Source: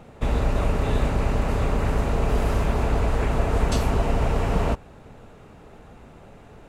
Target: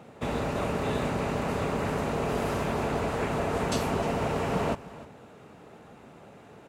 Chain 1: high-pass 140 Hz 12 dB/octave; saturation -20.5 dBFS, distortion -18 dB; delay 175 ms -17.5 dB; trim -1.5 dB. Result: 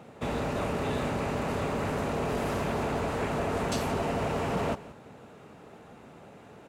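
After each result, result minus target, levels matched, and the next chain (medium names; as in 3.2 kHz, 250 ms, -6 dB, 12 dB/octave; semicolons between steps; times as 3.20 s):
saturation: distortion +16 dB; echo 131 ms early
high-pass 140 Hz 12 dB/octave; saturation -10.5 dBFS, distortion -34 dB; delay 175 ms -17.5 dB; trim -1.5 dB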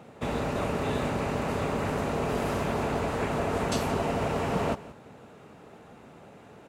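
echo 131 ms early
high-pass 140 Hz 12 dB/octave; saturation -10.5 dBFS, distortion -34 dB; delay 306 ms -17.5 dB; trim -1.5 dB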